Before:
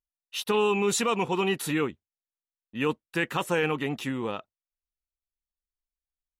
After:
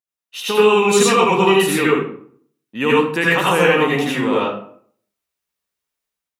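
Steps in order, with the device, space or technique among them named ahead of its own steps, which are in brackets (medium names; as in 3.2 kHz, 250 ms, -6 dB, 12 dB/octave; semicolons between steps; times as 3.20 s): far laptop microphone (reverberation RT60 0.55 s, pre-delay 70 ms, DRR -6.5 dB; high-pass 160 Hz 12 dB/octave; level rider gain up to 9 dB)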